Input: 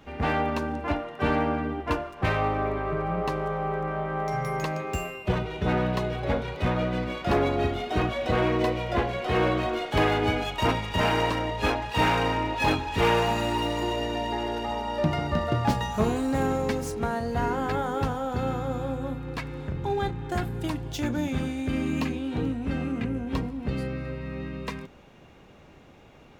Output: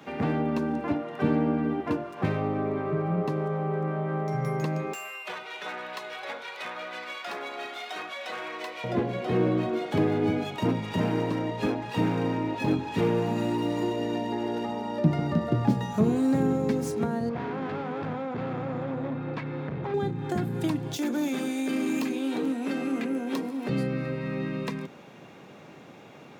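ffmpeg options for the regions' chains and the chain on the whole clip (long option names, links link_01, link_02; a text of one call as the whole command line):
ffmpeg -i in.wav -filter_complex "[0:a]asettb=1/sr,asplit=3[link_01][link_02][link_03];[link_01]atrim=end=4.934[link_04];[link_02]atrim=start=4.93:end=8.84,asetpts=PTS-STARTPTS,afade=type=in:duration=0.004:curve=qsin,afade=type=out:start_time=3.906:duration=0.004:curve=qsin,highpass=1100,asoftclip=type=hard:threshold=-25dB[link_05];[link_03]atrim=start=8.836[link_06];[link_04][link_05]acrossfade=duration=0.004:curve1=hsin:curve2=qsin[link_07];[link_07][link_06]acrossfade=duration=0.004:curve1=qsin:curve2=hsin,asettb=1/sr,asplit=3[link_08][link_09][link_10];[link_08]atrim=end=17.294[link_11];[link_09]atrim=start=17.29:end=19.94,asetpts=PTS-STARTPTS,afade=type=in:duration=0.004:curve=qsin,afade=type=out:start_time=2.646:duration=0.004:curve=qsin,volume=31.5dB,asoftclip=hard,volume=-31.5dB,lowpass=2800[link_12];[link_10]atrim=start=19.936[link_13];[link_11][link_12]acrossfade=duration=0.004:curve1=hsin:curve2=qsin[link_14];[link_14][link_13]acrossfade=duration=0.004:curve1=qsin:curve2=hsin,asettb=1/sr,asplit=3[link_15][link_16][link_17];[link_15]atrim=end=20.964[link_18];[link_16]atrim=start=20.96:end=23.69,asetpts=PTS-STARTPTS,afade=type=in:duration=0.004:curve=qsin,afade=type=out:start_time=2.726:duration=0.004:curve=qsin,highpass=frequency=260:width=0.5412,highpass=frequency=260:width=1.3066,highshelf=frequency=6600:gain=11.5,volume=26.5dB,asoftclip=hard,volume=-26.5dB[link_19];[link_17]atrim=start=23.686[link_20];[link_18][link_19]acrossfade=duration=0.004:curve1=hsin:curve2=qsin[link_21];[link_21][link_20]acrossfade=duration=0.004:curve1=qsin:curve2=hsin,highpass=frequency=130:width=0.5412,highpass=frequency=130:width=1.3066,bandreject=frequency=2900:width=21,acrossover=split=400[link_22][link_23];[link_23]acompressor=threshold=-39dB:ratio=10[link_24];[link_22][link_24]amix=inputs=2:normalize=0,volume=5dB" out.wav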